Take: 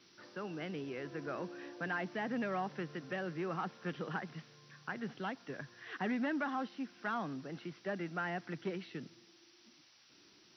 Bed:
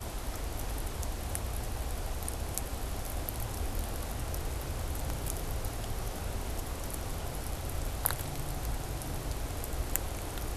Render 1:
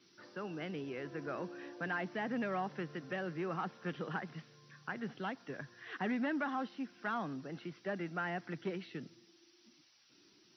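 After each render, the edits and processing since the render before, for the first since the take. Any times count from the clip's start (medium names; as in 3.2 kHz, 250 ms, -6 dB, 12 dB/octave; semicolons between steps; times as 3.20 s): noise reduction 6 dB, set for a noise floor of -64 dBFS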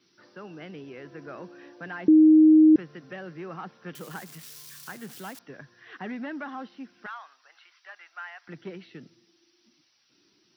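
2.08–2.76 s: bleep 312 Hz -11.5 dBFS; 3.95–5.39 s: zero-crossing glitches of -35 dBFS; 7.06–8.48 s: high-pass 930 Hz 24 dB/octave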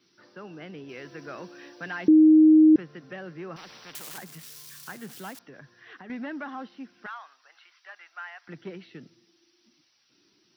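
0.89–2.11 s: treble shelf 2.5 kHz +11.5 dB; 3.56–4.18 s: spectrum-flattening compressor 4:1; 5.46–6.10 s: compression, threshold -42 dBFS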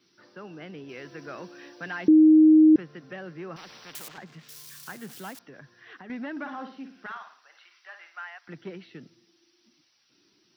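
4.08–4.49 s: distance through air 180 m; 6.31–8.24 s: flutter echo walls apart 9.5 m, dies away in 0.43 s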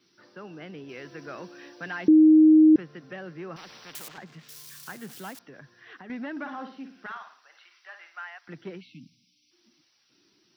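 8.81–9.51 s: spectral selection erased 320–2100 Hz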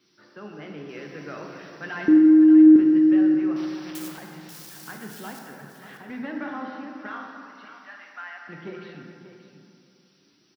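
on a send: delay 584 ms -11.5 dB; on the sum: plate-style reverb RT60 2.6 s, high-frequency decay 0.5×, DRR 1 dB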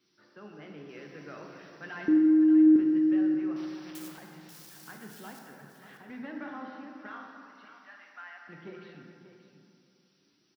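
trim -7.5 dB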